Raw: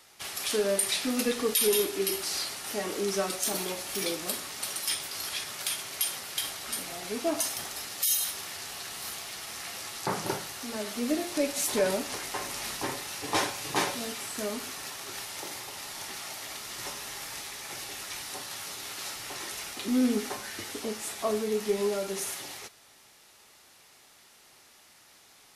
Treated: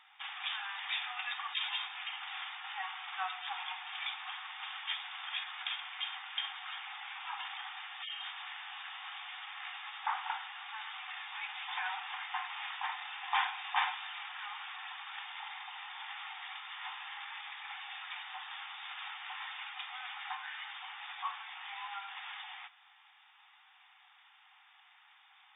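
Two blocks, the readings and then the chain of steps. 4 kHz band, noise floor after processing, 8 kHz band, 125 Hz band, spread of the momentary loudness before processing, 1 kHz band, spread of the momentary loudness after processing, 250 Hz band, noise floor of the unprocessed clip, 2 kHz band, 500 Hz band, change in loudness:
-5.0 dB, -63 dBFS, under -40 dB, under -40 dB, 11 LU, -1.5 dB, 8 LU, under -40 dB, -57 dBFS, -1.0 dB, under -30 dB, -8.5 dB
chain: FFT band-pass 730–3700 Hz; gain -1 dB

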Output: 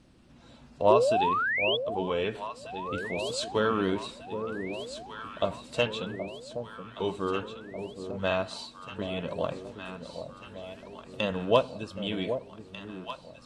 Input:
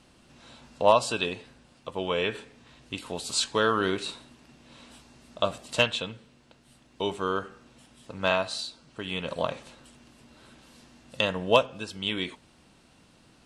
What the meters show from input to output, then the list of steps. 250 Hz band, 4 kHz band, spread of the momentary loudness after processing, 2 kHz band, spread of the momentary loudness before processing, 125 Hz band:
+1.5 dB, -4.5 dB, 16 LU, -1.5 dB, 16 LU, +1.0 dB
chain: bin magnitudes rounded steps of 15 dB; high shelf 10000 Hz -4.5 dB; painted sound rise, 0.9–1.77, 360–3500 Hz -23 dBFS; tilt shelf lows +4 dB, about 830 Hz; echo with dull and thin repeats by turns 0.772 s, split 800 Hz, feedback 75%, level -8 dB; gain -2.5 dB

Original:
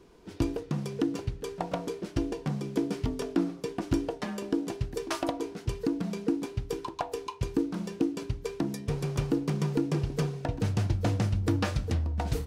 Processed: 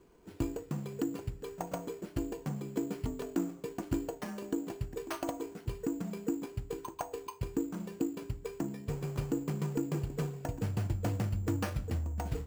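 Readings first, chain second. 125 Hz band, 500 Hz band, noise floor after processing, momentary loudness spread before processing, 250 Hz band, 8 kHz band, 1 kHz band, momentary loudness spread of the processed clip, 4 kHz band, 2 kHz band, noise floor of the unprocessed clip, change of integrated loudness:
-5.5 dB, -5.5 dB, -53 dBFS, 7 LU, -5.5 dB, -3.5 dB, -5.5 dB, 7 LU, -9.5 dB, -6.5 dB, -47 dBFS, -5.5 dB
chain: careless resampling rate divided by 6×, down filtered, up hold; gain -5.5 dB

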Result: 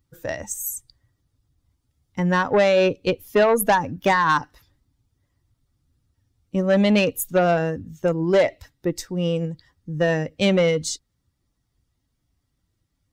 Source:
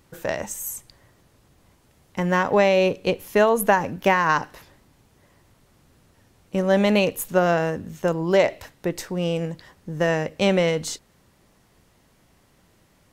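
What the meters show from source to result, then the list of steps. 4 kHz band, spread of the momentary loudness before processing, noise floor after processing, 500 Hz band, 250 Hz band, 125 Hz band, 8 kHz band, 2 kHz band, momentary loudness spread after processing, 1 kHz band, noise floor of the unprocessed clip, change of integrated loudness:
+1.0 dB, 13 LU, -75 dBFS, +0.5 dB, +1.5 dB, +2.0 dB, +2.0 dB, 0.0 dB, 12 LU, +0.5 dB, -60 dBFS, +1.0 dB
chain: per-bin expansion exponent 1.5; added harmonics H 5 -16 dB, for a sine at -7 dBFS

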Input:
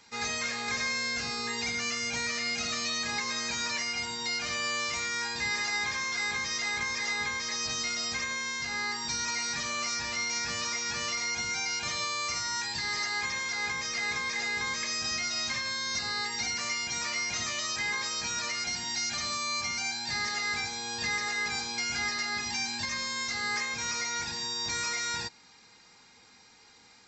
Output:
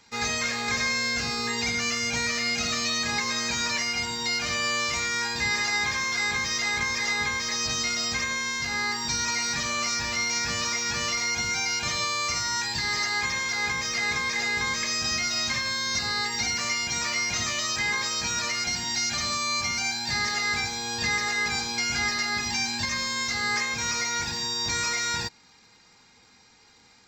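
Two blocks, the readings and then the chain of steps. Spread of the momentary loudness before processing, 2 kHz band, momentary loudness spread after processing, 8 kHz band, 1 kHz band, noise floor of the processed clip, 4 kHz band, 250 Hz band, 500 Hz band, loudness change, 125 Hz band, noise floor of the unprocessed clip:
2 LU, +4.5 dB, 2 LU, +4.5 dB, +5.0 dB, -57 dBFS, +4.5 dB, +6.5 dB, +5.5 dB, +4.5 dB, +8.5 dB, -57 dBFS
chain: low shelf 180 Hz +5.5 dB; in parallel at -2 dB: crossover distortion -49.5 dBFS

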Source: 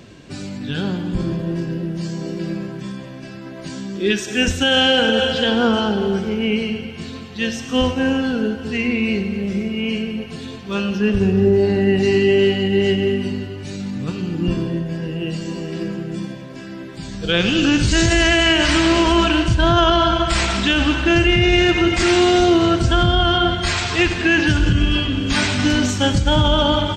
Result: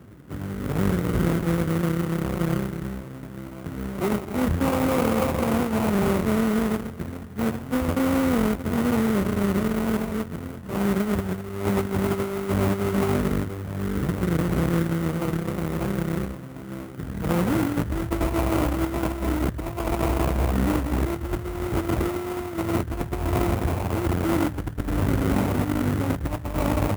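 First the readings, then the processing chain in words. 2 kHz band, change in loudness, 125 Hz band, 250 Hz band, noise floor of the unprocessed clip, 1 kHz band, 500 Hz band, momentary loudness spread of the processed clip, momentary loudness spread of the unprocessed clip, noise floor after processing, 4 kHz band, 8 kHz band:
-13.5 dB, -7.5 dB, -3.5 dB, -5.0 dB, -34 dBFS, -7.0 dB, -7.5 dB, 9 LU, 15 LU, -37 dBFS, -21.0 dB, -9.5 dB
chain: added harmonics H 3 -13 dB, 5 -30 dB, 6 -20 dB, 8 -13 dB, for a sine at -5.5 dBFS; tilt -2.5 dB/oct; sample-rate reducer 1700 Hz, jitter 20%; HPF 56 Hz 24 dB/oct; bell 4700 Hz -9.5 dB 1.8 oct; negative-ratio compressor -18 dBFS, ratio -0.5; gain -4.5 dB

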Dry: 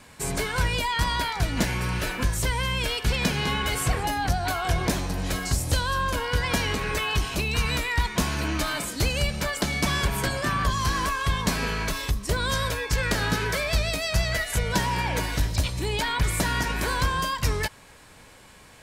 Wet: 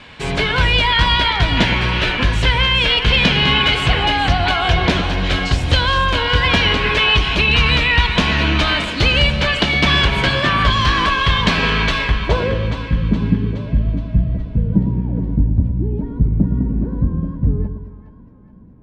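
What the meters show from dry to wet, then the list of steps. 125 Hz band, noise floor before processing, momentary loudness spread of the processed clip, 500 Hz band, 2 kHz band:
+9.5 dB, -50 dBFS, 7 LU, +7.5 dB, +10.5 dB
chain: low-pass sweep 3200 Hz -> 230 Hz, 11.95–12.72; split-band echo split 760 Hz, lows 0.111 s, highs 0.419 s, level -8.5 dB; gain +8 dB

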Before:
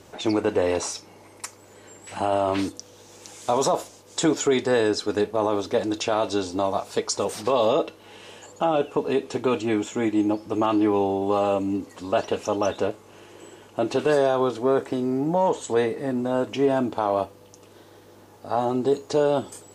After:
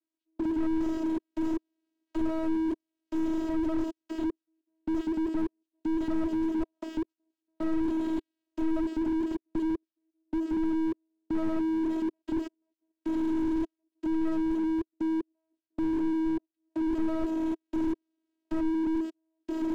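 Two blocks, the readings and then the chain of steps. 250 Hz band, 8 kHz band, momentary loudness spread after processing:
-0.5 dB, under -25 dB, 9 LU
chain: delta modulation 32 kbps, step -33 dBFS; recorder AGC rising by 8 dB/s; in parallel at -7 dB: backlash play -20.5 dBFS; on the sum: sample leveller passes 3; dynamic EQ 1700 Hz, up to -5 dB, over -32 dBFS, Q 1.2; fixed phaser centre 330 Hz, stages 4; reverse; compressor 10:1, threshold -22 dBFS, peak gain reduction 14 dB; reverse; step gate "..xxxx.x...xxx" 77 bpm -60 dB; vocoder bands 8, saw 321 Hz; slew limiter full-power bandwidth 6.7 Hz; gain +7 dB

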